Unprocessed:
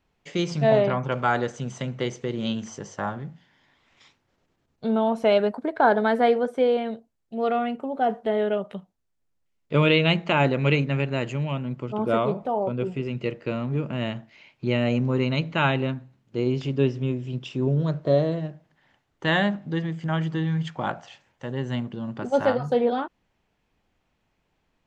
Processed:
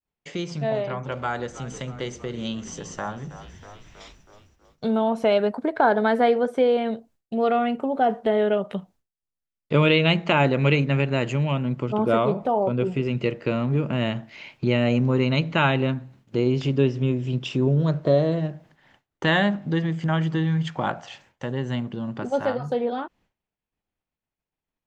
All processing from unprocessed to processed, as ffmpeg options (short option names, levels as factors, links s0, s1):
-filter_complex "[0:a]asettb=1/sr,asplit=3[s0][s1][s2];[s0]atrim=end=0.754[s3];[s1]atrim=start=0.75:end=5.02,asetpts=PTS-STARTPTS,afade=t=in:d=0.004:c=qsin,afade=t=out:st=4.266:d=0.004:c=qsin,highshelf=f=6000:g=7,bandreject=f=50:t=h:w=6,bandreject=f=100:t=h:w=6,bandreject=f=150:t=h:w=6,bandreject=f=200:t=h:w=6,bandreject=f=250:t=h:w=6,bandreject=f=300:t=h:w=6,bandreject=f=350:t=h:w=6,bandreject=f=400:t=h:w=6,asplit=7[s4][s5][s6][s7][s8][s9][s10];[s5]adelay=321,afreqshift=-53,volume=0.126[s11];[s6]adelay=642,afreqshift=-106,volume=0.0767[s12];[s7]adelay=963,afreqshift=-159,volume=0.0468[s13];[s8]adelay=1284,afreqshift=-212,volume=0.0285[s14];[s9]adelay=1605,afreqshift=-265,volume=0.0174[s15];[s10]adelay=1926,afreqshift=-318,volume=0.0106[s16];[s4][s11][s12][s13][s14][s15][s16]amix=inputs=7:normalize=0,atrim=end_sample=188307[s17];[s2]atrim=start=5.016[s18];[s3][s17]acrossfade=d=0.004:c1=hsin:c2=qsin[s19];[s19][s18]acrossfade=d=0.004:c1=qsin:c2=hsin,acompressor=threshold=0.00794:ratio=1.5,agate=range=0.0224:threshold=0.00126:ratio=3:detection=peak,dynaudnorm=f=690:g=13:m=2.37,volume=1.41"